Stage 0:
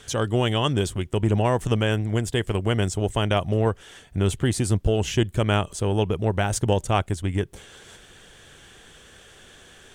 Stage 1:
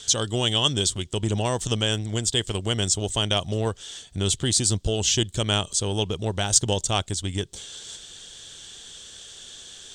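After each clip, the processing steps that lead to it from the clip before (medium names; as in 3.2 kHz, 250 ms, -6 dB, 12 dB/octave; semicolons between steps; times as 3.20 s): high-order bell 5.2 kHz +16 dB; trim -4 dB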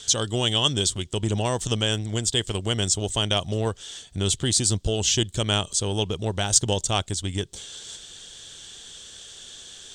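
no audible change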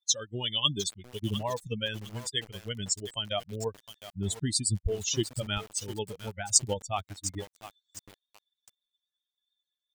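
expander on every frequency bin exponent 3; bit-crushed delay 706 ms, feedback 35%, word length 6-bit, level -11.5 dB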